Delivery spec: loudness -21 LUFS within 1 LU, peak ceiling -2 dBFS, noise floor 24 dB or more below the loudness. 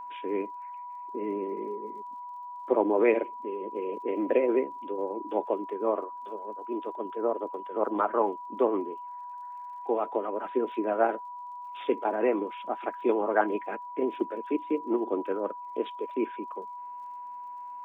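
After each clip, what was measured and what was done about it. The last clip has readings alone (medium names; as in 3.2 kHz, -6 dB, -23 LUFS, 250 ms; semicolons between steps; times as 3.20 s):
tick rate 38 per s; steady tone 980 Hz; tone level -38 dBFS; loudness -30.5 LUFS; peak level -9.5 dBFS; loudness target -21.0 LUFS
-> de-click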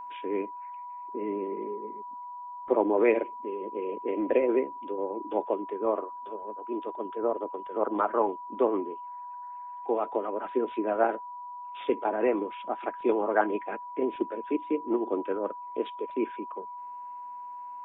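tick rate 0.056 per s; steady tone 980 Hz; tone level -38 dBFS
-> band-stop 980 Hz, Q 30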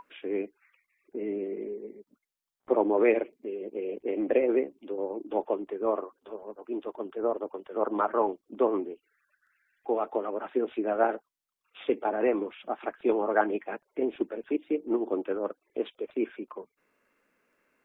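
steady tone not found; loudness -30.5 LUFS; peak level -9.0 dBFS; loudness target -21.0 LUFS
-> trim +9.5 dB; peak limiter -2 dBFS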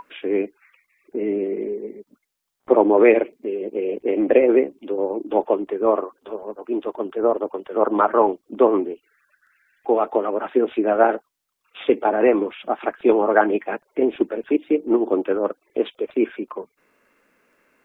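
loudness -21.0 LUFS; peak level -2.0 dBFS; noise floor -75 dBFS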